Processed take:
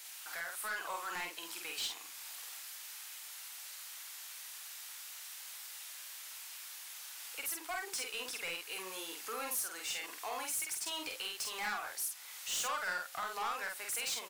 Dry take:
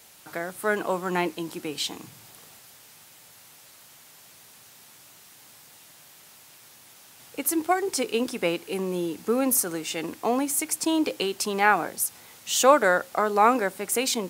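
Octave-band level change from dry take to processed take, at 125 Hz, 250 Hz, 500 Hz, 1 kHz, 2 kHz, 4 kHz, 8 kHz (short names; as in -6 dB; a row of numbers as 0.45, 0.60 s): under -25 dB, -28.0 dB, -23.0 dB, -16.0 dB, -10.0 dB, -7.0 dB, -9.0 dB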